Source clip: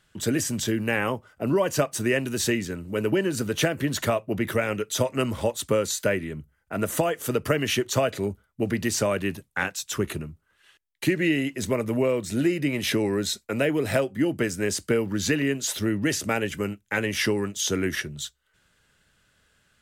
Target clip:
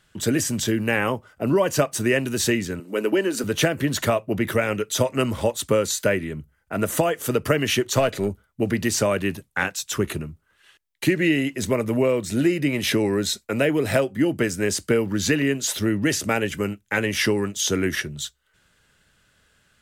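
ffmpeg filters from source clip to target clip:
-filter_complex "[0:a]asettb=1/sr,asplit=3[s0][s1][s2];[s0]atrim=end=2.804[s3];[s1]atrim=start=2.8:end=3.44,asetpts=PTS-STARTPTS,afade=t=in:d=0.004:c=qsin,afade=t=out:st=0.636:d=0.004:c=qsin,highpass=f=230:w=0.5412,highpass=f=230:w=1.3066[s4];[s2]atrim=start=3.436[s5];[s3][s4]acrossfade=d=0.004:c1=hsin:c2=qsin[s6];[s6][s5]acrossfade=d=0.004:c1=qsin:c2=hsin,asettb=1/sr,asplit=3[s7][s8][s9];[s7]atrim=end=7.964[s10];[s8]atrim=start=7.96:end=8.46,asetpts=PTS-STARTPTS,afade=t=in:d=0.004:c=qsin,afade=t=out:st=0.496:d=0.004:c=qsin,aeval=exprs='0.299*(cos(1*acos(clip(val(0)/0.299,-1,1)))-cos(1*PI/2))+0.00944*(cos(8*acos(clip(val(0)/0.299,-1,1)))-cos(8*PI/2))':c=same[s11];[s9]atrim=start=8.456[s12];[s10][s11]acrossfade=d=0.004:c1=hsin:c2=qsin[s13];[s13][s12]acrossfade=d=0.004:c1=qsin:c2=hsin,volume=1.41"

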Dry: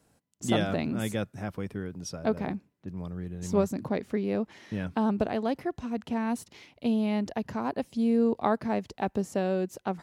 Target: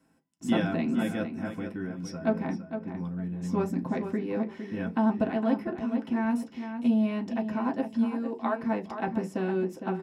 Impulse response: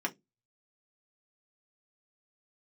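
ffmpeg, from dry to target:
-filter_complex "[0:a]asplit=3[s0][s1][s2];[s0]afade=t=out:st=8.03:d=0.02[s3];[s1]highpass=f=650:p=1,afade=t=in:st=8.03:d=0.02,afade=t=out:st=8.58:d=0.02[s4];[s2]afade=t=in:st=8.58:d=0.02[s5];[s3][s4][s5]amix=inputs=3:normalize=0,asplit=2[s6][s7];[s7]adelay=459,lowpass=f=4000:p=1,volume=0.376,asplit=2[s8][s9];[s9]adelay=459,lowpass=f=4000:p=1,volume=0.21,asplit=2[s10][s11];[s11]adelay=459,lowpass=f=4000:p=1,volume=0.21[s12];[s6][s8][s10][s12]amix=inputs=4:normalize=0[s13];[1:a]atrim=start_sample=2205,asetrate=41013,aresample=44100[s14];[s13][s14]afir=irnorm=-1:irlink=0,volume=0.473"

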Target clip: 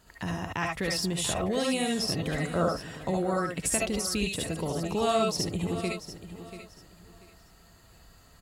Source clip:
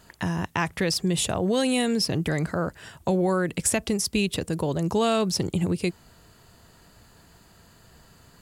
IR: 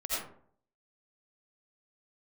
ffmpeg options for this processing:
-filter_complex "[0:a]asettb=1/sr,asplit=3[s0][s1][s2];[s0]atrim=end=2.544[s3];[s1]atrim=start=2.54:end=3.02,asetpts=PTS-STARTPTS,afade=t=in:d=0.004:c=qsin,afade=t=out:st=0.476:d=0.004:c=qsin,equalizer=f=420:w=0.3:g=6.5[s4];[s2]atrim=start=3.016[s5];[s3][s4]acrossfade=d=0.004:c1=hsin:c2=qsin[s6];[s6][s5]acrossfade=d=0.004:c1=qsin:c2=hsin,aecho=1:1:687|1374|2061:0.224|0.056|0.014[s7];[1:a]atrim=start_sample=2205,atrim=end_sample=3528[s8];[s7][s8]afir=irnorm=-1:irlink=0,volume=0.75"

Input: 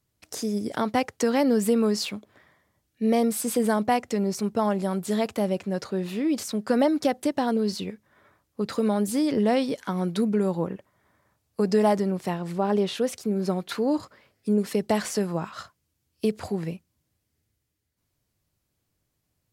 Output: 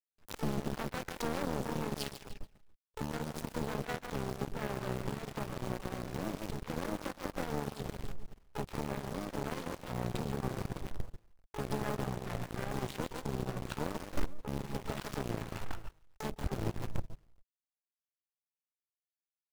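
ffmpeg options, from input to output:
-filter_complex "[0:a]adynamicsmooth=sensitivity=6.5:basefreq=950,alimiter=limit=0.0944:level=0:latency=1:release=20,asplit=2[s0][s1];[s1]adelay=143,lowpass=f=3400:p=1,volume=0.562,asplit=2[s2][s3];[s3]adelay=143,lowpass=f=3400:p=1,volume=0.39,asplit=2[s4][s5];[s5]adelay=143,lowpass=f=3400:p=1,volume=0.39,asplit=2[s6][s7];[s7]adelay=143,lowpass=f=3400:p=1,volume=0.39,asplit=2[s8][s9];[s9]adelay=143,lowpass=f=3400:p=1,volume=0.39[s10];[s0][s2][s4][s6][s8][s10]amix=inputs=6:normalize=0,acrusher=bits=7:dc=4:mix=0:aa=0.000001,asplit=3[s11][s12][s13];[s12]asetrate=29433,aresample=44100,atempo=1.49831,volume=0.794[s14];[s13]asetrate=88200,aresample=44100,atempo=0.5,volume=0.501[s15];[s11][s14][s15]amix=inputs=3:normalize=0,lowshelf=f=110:g=8.5,acompressor=threshold=0.00891:ratio=2,asubboost=boost=6:cutoff=69,aeval=exprs='0.075*(cos(1*acos(clip(val(0)/0.075,-1,1)))-cos(1*PI/2))+0.015*(cos(4*acos(clip(val(0)/0.075,-1,1)))-cos(4*PI/2))+0.00106*(cos(6*acos(clip(val(0)/0.075,-1,1)))-cos(6*PI/2))+0.00473*(cos(7*acos(clip(val(0)/0.075,-1,1)))-cos(7*PI/2))+0.00596*(cos(8*acos(clip(val(0)/0.075,-1,1)))-cos(8*PI/2))':c=same"

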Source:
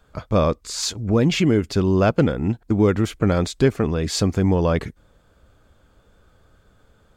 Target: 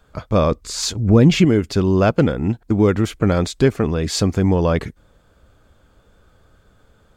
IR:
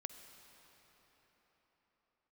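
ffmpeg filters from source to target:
-filter_complex "[0:a]asettb=1/sr,asplit=3[s0][s1][s2];[s0]atrim=end=0.514[s3];[s1]atrim=start=0.51:end=1.45,asetpts=PTS-STARTPTS,afade=t=in:d=0.004:c=qsin,afade=t=out:st=0.936:d=0.004:c=qsin,lowshelf=f=330:g=6.5[s4];[s2]atrim=start=1.446[s5];[s3][s4]acrossfade=d=0.004:c1=hsin:c2=qsin[s6];[s6][s5]acrossfade=d=0.004:c1=qsin:c2=hsin,volume=1.26"

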